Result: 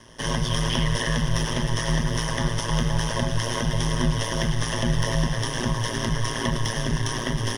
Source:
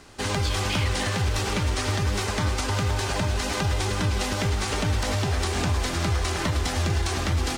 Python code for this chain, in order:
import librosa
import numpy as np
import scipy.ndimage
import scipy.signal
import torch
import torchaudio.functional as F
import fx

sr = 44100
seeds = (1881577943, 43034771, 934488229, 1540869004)

y = fx.ripple_eq(x, sr, per_octave=1.2, db=16)
y = y * np.sin(2.0 * np.pi * 58.0 * np.arange(len(y)) / sr)